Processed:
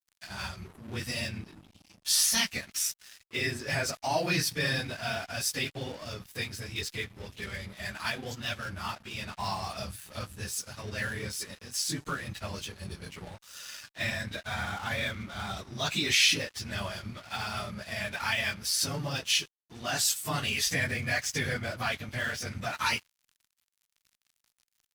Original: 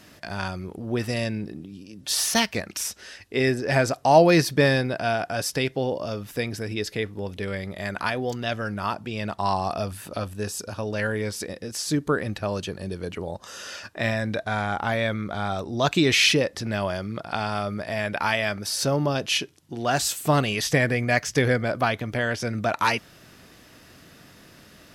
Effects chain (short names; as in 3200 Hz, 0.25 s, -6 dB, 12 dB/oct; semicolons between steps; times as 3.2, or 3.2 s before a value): phase scrambler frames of 50 ms; low shelf 63 Hz +5.5 dB; on a send at -21 dB: reverb, pre-delay 3 ms; on the sum: crossover distortion -42 dBFS; in parallel at +2 dB: limiter -14.5 dBFS, peak gain reduction 12.5 dB; on the sum: passive tone stack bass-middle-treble 5-5-5